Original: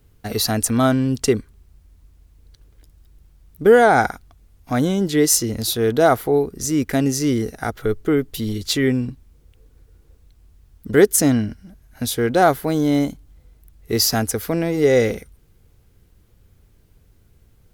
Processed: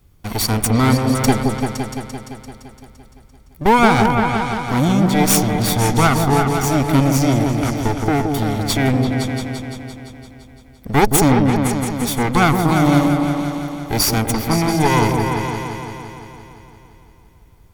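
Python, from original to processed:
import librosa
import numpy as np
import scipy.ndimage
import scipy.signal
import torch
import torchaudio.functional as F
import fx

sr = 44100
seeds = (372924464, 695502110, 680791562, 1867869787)

y = fx.lower_of_two(x, sr, delay_ms=0.88)
y = fx.echo_opening(y, sr, ms=171, hz=750, octaves=2, feedback_pct=70, wet_db=-3)
y = y * librosa.db_to_amplitude(2.5)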